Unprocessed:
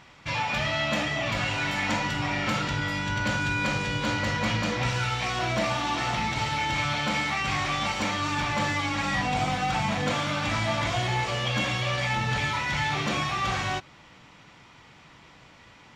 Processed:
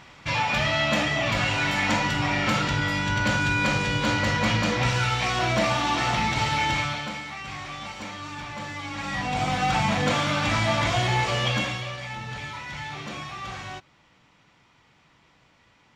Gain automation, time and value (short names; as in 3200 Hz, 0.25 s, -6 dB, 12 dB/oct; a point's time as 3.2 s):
6.7 s +3.5 dB
7.21 s -8.5 dB
8.67 s -8.5 dB
9.66 s +3.5 dB
11.48 s +3.5 dB
11.98 s -8 dB